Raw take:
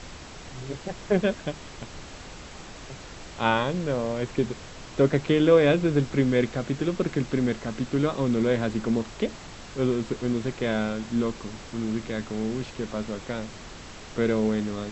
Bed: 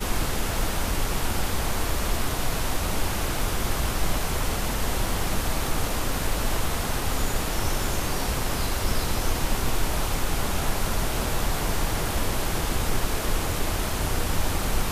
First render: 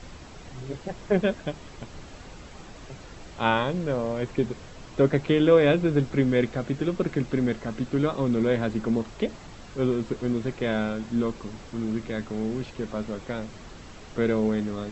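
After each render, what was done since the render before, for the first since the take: denoiser 6 dB, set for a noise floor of -43 dBFS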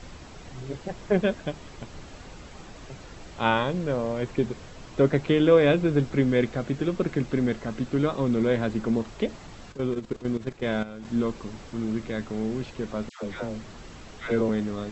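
9.72–11.05 level quantiser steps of 13 dB; 13.09–14.49 dispersion lows, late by 0.14 s, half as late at 1000 Hz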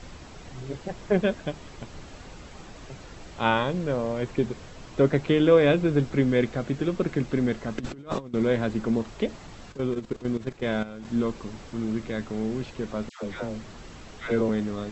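7.78–8.34 negative-ratio compressor -32 dBFS, ratio -0.5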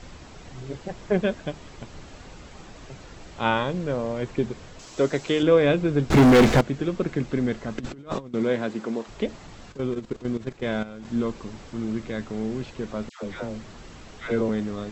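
4.79–5.43 tone controls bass -8 dB, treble +12 dB; 6.1–6.61 sample leveller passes 5; 8.32–9.07 HPF 110 Hz -> 360 Hz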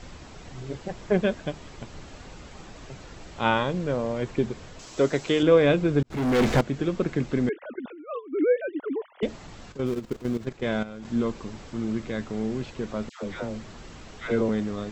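6.03–6.79 fade in; 7.49–9.23 sine-wave speech; 9.86–10.46 switching dead time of 0.11 ms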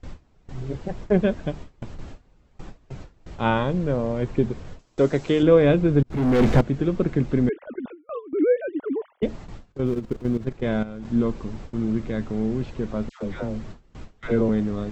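gate with hold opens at -32 dBFS; tilt -2 dB/oct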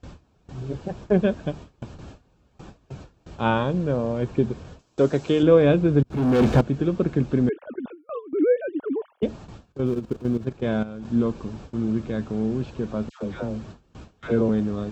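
HPF 56 Hz; notch 2000 Hz, Q 5.7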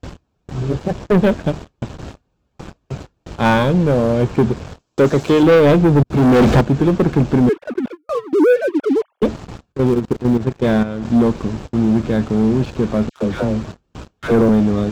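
sample leveller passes 3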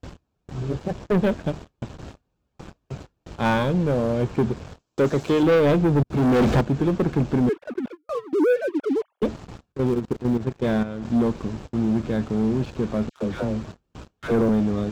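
gain -7 dB

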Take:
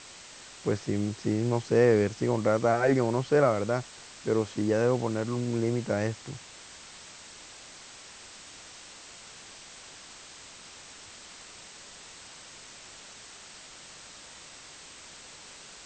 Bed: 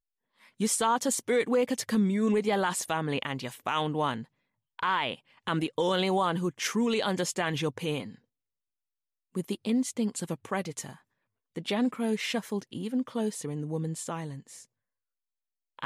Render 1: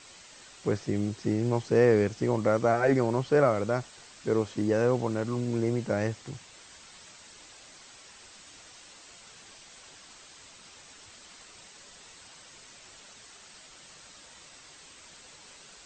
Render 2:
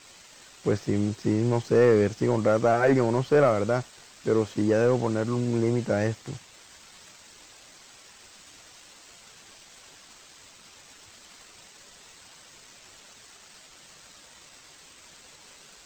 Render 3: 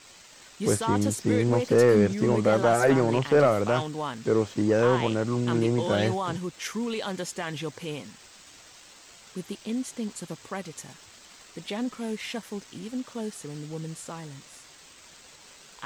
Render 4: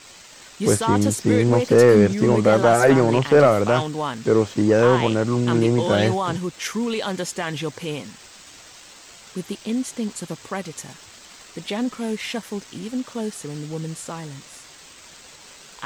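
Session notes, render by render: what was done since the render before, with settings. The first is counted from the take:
denoiser 6 dB, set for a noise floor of -49 dBFS
sample leveller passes 1
add bed -3.5 dB
gain +6 dB

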